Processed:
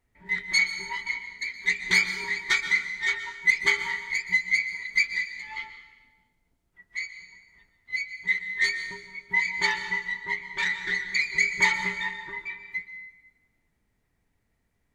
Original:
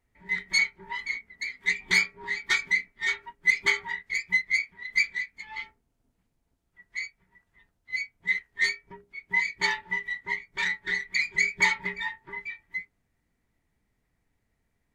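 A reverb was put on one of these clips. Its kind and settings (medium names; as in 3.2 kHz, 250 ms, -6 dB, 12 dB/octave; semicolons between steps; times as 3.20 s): plate-style reverb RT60 1.1 s, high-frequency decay 0.95×, pre-delay 110 ms, DRR 9 dB; trim +1 dB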